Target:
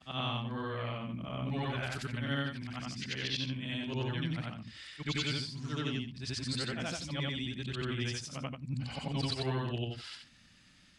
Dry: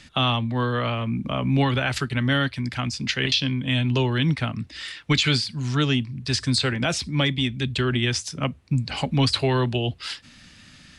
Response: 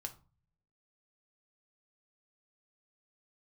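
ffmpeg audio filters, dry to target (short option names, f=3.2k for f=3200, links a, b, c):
-af "afftfilt=real='re':imag='-im':win_size=8192:overlap=0.75,volume=-8.5dB"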